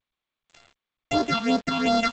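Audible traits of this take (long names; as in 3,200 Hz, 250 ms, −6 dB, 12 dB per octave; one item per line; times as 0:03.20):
a buzz of ramps at a fixed pitch in blocks of 64 samples
phaser sweep stages 6, 2.7 Hz, lowest notch 480–2,500 Hz
a quantiser's noise floor 8 bits, dither none
G.722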